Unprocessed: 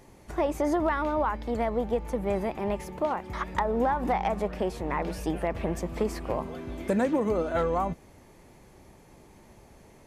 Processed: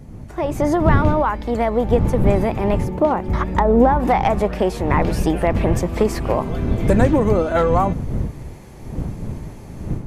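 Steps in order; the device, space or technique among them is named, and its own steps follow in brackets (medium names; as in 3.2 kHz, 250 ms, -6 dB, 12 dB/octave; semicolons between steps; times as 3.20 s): 2.80–4.00 s: tilt shelf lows +6 dB, about 750 Hz; smartphone video outdoors (wind noise 150 Hz -32 dBFS; level rider gain up to 11 dB; AAC 128 kbps 44.1 kHz)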